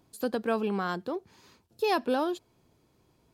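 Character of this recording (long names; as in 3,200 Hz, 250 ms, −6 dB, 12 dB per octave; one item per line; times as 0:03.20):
background noise floor −69 dBFS
spectral slope −3.5 dB per octave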